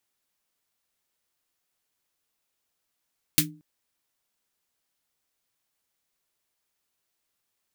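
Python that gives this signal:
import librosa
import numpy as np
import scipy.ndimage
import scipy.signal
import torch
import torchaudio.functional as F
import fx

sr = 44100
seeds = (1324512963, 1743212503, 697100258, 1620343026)

y = fx.drum_snare(sr, seeds[0], length_s=0.23, hz=160.0, second_hz=300.0, noise_db=11, noise_from_hz=1700.0, decay_s=0.4, noise_decay_s=0.12)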